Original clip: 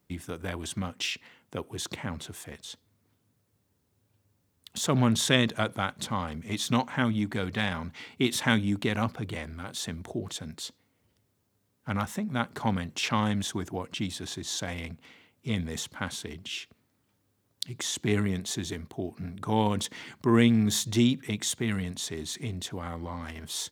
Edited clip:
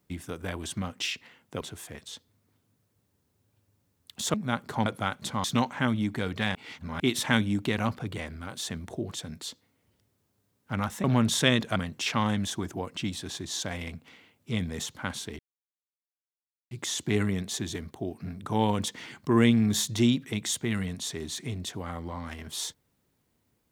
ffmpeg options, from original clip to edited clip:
-filter_complex "[0:a]asplit=11[a][b][c][d][e][f][g][h][i][j][k];[a]atrim=end=1.612[l];[b]atrim=start=2.178:end=4.912[m];[c]atrim=start=12.208:end=12.732[n];[d]atrim=start=5.628:end=6.212[o];[e]atrim=start=6.608:end=7.722[p];[f]atrim=start=7.718:end=8.172,asetpts=PTS-STARTPTS,areverse[q];[g]atrim=start=8.168:end=12.212[r];[h]atrim=start=4.908:end=5.632[s];[i]atrim=start=12.728:end=16.36,asetpts=PTS-STARTPTS,afade=t=out:st=3.628:d=0.004:c=hsin[t];[j]atrim=start=16.36:end=17.68,asetpts=PTS-STARTPTS,volume=0[u];[k]atrim=start=17.68,asetpts=PTS-STARTPTS,afade=t=in:d=0.004:c=hsin[v];[l][m]acrossfade=d=0.004:c1=hsin:c2=hsin[w];[w][n]acrossfade=d=0.004:c1=hsin:c2=hsin[x];[x][o]acrossfade=d=0.004:c1=hsin:c2=hsin[y];[y][p]acrossfade=d=0.004:c1=hsin:c2=hsin[z];[z][q]acrossfade=d=0.004:c1=hsin:c2=hsin[aa];[aa][r]acrossfade=d=0.004:c1=hsin:c2=hsin[ab];[ab][s]acrossfade=d=0.004:c1=hsin:c2=hsin[ac];[t][u][v]concat=n=3:v=0:a=1[ad];[ac][ad]acrossfade=d=0.004:c1=hsin:c2=hsin"

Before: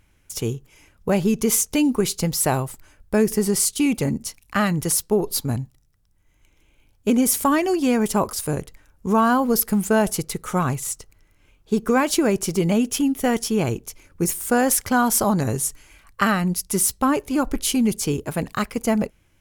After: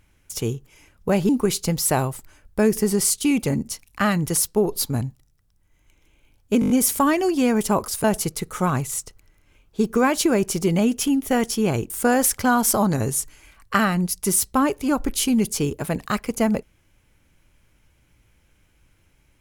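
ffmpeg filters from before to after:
-filter_complex "[0:a]asplit=9[a][b][c][d][e][f][g][h][i];[a]atrim=end=1.292[j];[b]atrim=start=1.838:end=7.172[k];[c]atrim=start=7.148:end=7.172[l];[d]atrim=start=7.148:end=7.172[m];[e]atrim=start=7.148:end=7.172[n];[f]atrim=start=7.148:end=7.172[o];[g]atrim=start=7.148:end=8.492[p];[h]atrim=start=9.968:end=13.832[q];[i]atrim=start=14.368[r];[j][k]acrossfade=d=0.004:c1=hsin:c2=hsin[s];[s][l]acrossfade=d=0.004:c1=hsin:c2=hsin[t];[t][m]acrossfade=d=0.004:c1=hsin:c2=hsin[u];[u][n]acrossfade=d=0.004:c1=hsin:c2=hsin[v];[v][o]acrossfade=d=0.004:c1=hsin:c2=hsin[w];[w][p]acrossfade=d=0.004:c1=hsin:c2=hsin[x];[x][q]acrossfade=d=0.004:c1=hsin:c2=hsin[y];[y][r]acrossfade=d=0.004:c1=hsin:c2=hsin"

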